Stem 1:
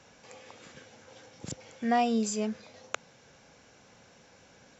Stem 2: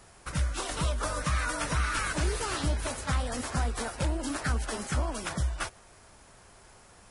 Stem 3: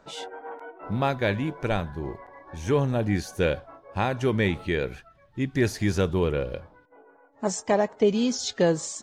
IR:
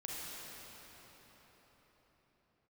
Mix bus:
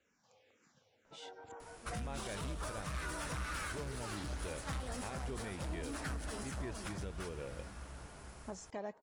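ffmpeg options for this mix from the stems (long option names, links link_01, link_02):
-filter_complex "[0:a]asplit=2[link_01][link_02];[link_02]afreqshift=-2[link_03];[link_01][link_03]amix=inputs=2:normalize=1,volume=-16.5dB[link_04];[1:a]asoftclip=type=tanh:threshold=-29dB,adelay=1600,volume=-4.5dB,asplit=2[link_05][link_06];[link_06]volume=-5.5dB[link_07];[2:a]lowpass=8700,adelay=1050,volume=-13.5dB[link_08];[3:a]atrim=start_sample=2205[link_09];[link_07][link_09]afir=irnorm=-1:irlink=0[link_10];[link_04][link_05][link_08][link_10]amix=inputs=4:normalize=0,alimiter=level_in=8.5dB:limit=-24dB:level=0:latency=1:release=433,volume=-8.5dB"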